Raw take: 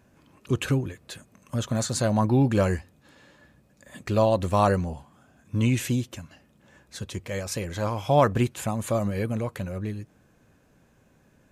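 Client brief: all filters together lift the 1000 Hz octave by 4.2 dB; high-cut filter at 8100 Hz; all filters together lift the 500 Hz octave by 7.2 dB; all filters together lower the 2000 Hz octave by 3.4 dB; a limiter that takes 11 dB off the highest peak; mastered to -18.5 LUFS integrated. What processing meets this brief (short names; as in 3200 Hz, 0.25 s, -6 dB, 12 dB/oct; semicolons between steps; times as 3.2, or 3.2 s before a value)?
LPF 8100 Hz; bell 500 Hz +8 dB; bell 1000 Hz +3.5 dB; bell 2000 Hz -6.5 dB; gain +7 dB; limiter -6.5 dBFS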